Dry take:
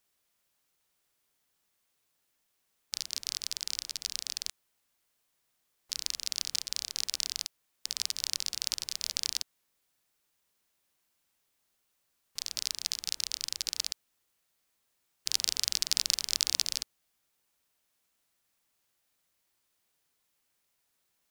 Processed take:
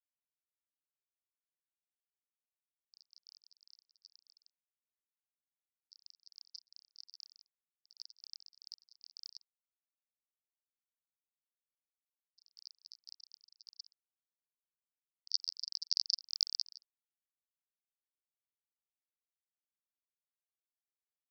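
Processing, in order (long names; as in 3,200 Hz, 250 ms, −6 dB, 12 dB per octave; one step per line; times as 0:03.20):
centre clipping without the shift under −37.5 dBFS
every bin expanded away from the loudest bin 4 to 1
level −7 dB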